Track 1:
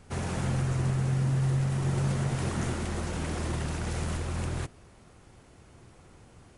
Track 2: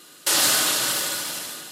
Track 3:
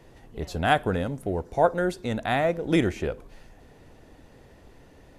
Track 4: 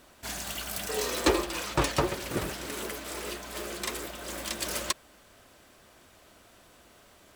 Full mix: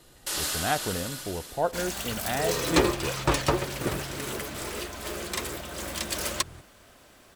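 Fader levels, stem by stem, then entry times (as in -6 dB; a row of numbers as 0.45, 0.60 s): -14.0, -11.0, -6.0, +2.0 dB; 1.95, 0.00, 0.00, 1.50 s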